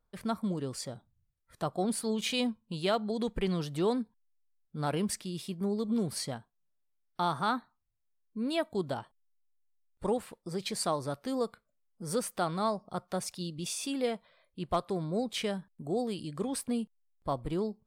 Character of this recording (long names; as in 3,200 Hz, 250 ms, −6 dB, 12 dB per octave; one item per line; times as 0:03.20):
background noise floor −78 dBFS
spectral slope −4.5 dB per octave